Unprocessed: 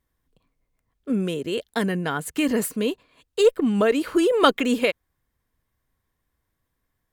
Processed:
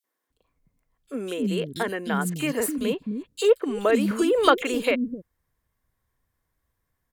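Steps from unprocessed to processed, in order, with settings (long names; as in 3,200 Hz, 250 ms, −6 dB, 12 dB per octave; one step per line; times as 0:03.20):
three-band delay without the direct sound highs, mids, lows 40/300 ms, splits 280/3,300 Hz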